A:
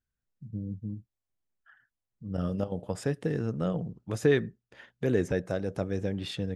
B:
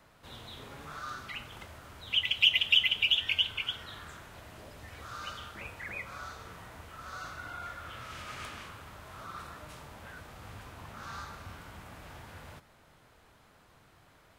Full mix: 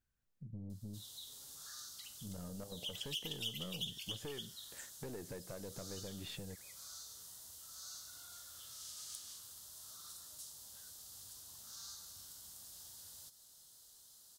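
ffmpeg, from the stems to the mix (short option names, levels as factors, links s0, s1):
-filter_complex "[0:a]acompressor=threshold=0.0224:ratio=6,aeval=exprs='(tanh(44.7*val(0)+0.35)-tanh(0.35))/44.7':c=same,volume=1.26[s0];[1:a]aexciter=amount=12.2:drive=9.7:freq=3800,adelay=700,volume=0.141[s1];[s0][s1]amix=inputs=2:normalize=0,acompressor=threshold=0.00126:ratio=1.5"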